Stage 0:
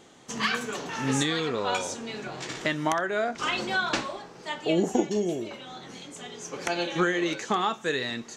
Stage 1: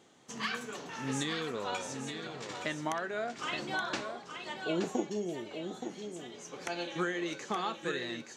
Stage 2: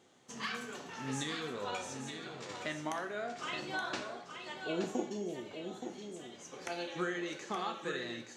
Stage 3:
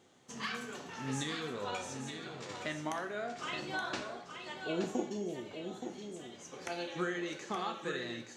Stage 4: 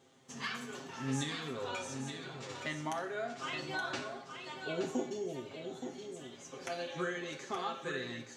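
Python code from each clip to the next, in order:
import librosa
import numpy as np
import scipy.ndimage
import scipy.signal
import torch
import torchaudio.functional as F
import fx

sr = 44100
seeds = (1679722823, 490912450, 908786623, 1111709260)

y1 = scipy.signal.sosfilt(scipy.signal.butter(2, 75.0, 'highpass', fs=sr, output='sos'), x)
y1 = y1 + 10.0 ** (-7.5 / 20.0) * np.pad(y1, (int(873 * sr / 1000.0), 0))[:len(y1)]
y1 = y1 * 10.0 ** (-8.5 / 20.0)
y2 = fx.rev_plate(y1, sr, seeds[0], rt60_s=0.64, hf_ratio=1.0, predelay_ms=0, drr_db=6.0)
y2 = y2 * 10.0 ** (-4.0 / 20.0)
y3 = fx.low_shelf(y2, sr, hz=120.0, db=5.5)
y4 = y3 + 0.74 * np.pad(y3, (int(7.5 * sr / 1000.0), 0))[:len(y3)]
y4 = y4 * 10.0 ** (-2.0 / 20.0)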